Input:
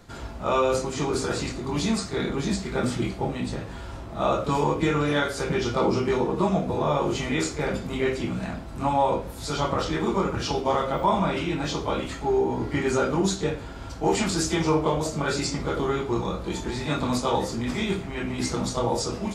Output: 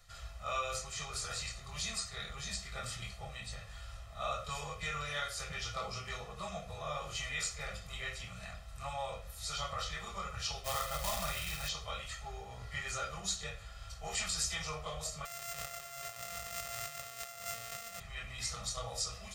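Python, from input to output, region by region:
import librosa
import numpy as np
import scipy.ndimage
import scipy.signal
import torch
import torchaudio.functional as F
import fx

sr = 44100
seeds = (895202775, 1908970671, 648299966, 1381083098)

y = fx.chain(x, sr, fx.quant_companded(bits=4),
    fx.low_shelf(hz=190.0, db=5.0),
    fx.room_flutter(wall_m=8.4, rt60_s=0.29), at=(10.64, 11.69))
y = fx.chain(y, sr, fx.sample_sort(block=64),
    fx.highpass(hz=130.0, slope=12),
    fx.over_compress(threshold_db=-33.0, ratio=-1.0), at=(15.25, 18.0))
y = fx.tone_stack(y, sr, knobs='10-0-10')
y = fx.notch(y, sr, hz=900.0, q=19.0)
y = y + 0.67 * np.pad(y, (int(1.6 * sr / 1000.0), 0))[:len(y)]
y = F.gain(torch.from_numpy(y), -5.5).numpy()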